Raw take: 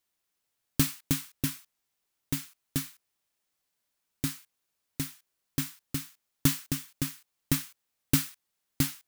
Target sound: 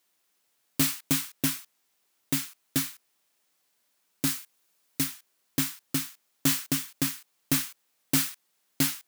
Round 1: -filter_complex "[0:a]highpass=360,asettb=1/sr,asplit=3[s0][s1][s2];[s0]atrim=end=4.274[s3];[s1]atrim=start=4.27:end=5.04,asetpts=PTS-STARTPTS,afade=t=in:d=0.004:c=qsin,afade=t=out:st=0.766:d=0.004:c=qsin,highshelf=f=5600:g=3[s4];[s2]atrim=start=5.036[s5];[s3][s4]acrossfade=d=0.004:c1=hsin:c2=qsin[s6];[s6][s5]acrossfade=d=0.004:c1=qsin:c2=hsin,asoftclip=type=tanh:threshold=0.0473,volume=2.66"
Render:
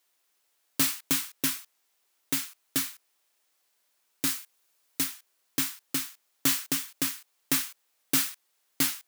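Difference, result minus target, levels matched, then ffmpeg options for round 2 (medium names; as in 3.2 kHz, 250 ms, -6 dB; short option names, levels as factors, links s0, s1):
250 Hz band -4.5 dB
-filter_complex "[0:a]highpass=180,asettb=1/sr,asplit=3[s0][s1][s2];[s0]atrim=end=4.274[s3];[s1]atrim=start=4.27:end=5.04,asetpts=PTS-STARTPTS,afade=t=in:d=0.004:c=qsin,afade=t=out:st=0.766:d=0.004:c=qsin,highshelf=f=5600:g=3[s4];[s2]atrim=start=5.036[s5];[s3][s4]acrossfade=d=0.004:c1=hsin:c2=qsin[s6];[s6][s5]acrossfade=d=0.004:c1=qsin:c2=hsin,asoftclip=type=tanh:threshold=0.0473,volume=2.66"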